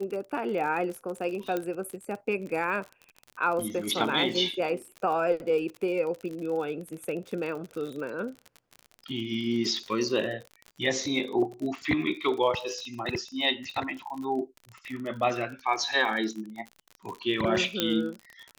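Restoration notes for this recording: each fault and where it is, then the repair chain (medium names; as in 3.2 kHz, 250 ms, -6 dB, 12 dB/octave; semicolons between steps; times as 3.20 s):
crackle 50 per s -34 dBFS
1.57 s: pop -17 dBFS
17.80 s: pop -9 dBFS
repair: de-click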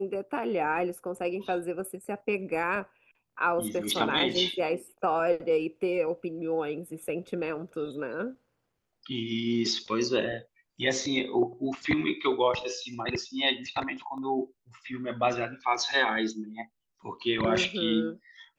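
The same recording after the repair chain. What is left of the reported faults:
nothing left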